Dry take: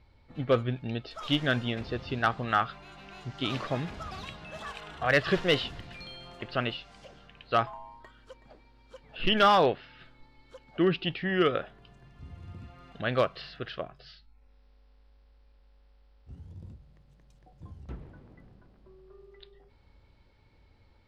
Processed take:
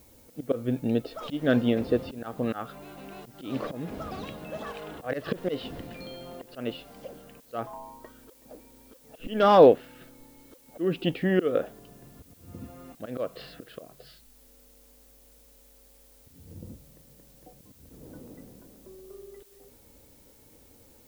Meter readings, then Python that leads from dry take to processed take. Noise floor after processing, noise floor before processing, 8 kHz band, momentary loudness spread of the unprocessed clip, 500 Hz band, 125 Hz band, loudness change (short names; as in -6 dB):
-57 dBFS, -61 dBFS, n/a, 21 LU, +4.5 dB, -1.5 dB, +2.0 dB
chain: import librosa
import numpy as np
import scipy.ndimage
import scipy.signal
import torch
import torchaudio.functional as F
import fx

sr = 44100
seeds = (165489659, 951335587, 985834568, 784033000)

y = fx.auto_swell(x, sr, attack_ms=261.0)
y = fx.dmg_noise_colour(y, sr, seeds[0], colour='blue', level_db=-56.0)
y = fx.small_body(y, sr, hz=(280.0, 470.0), ring_ms=20, db=15)
y = y * 10.0 ** (-3.0 / 20.0)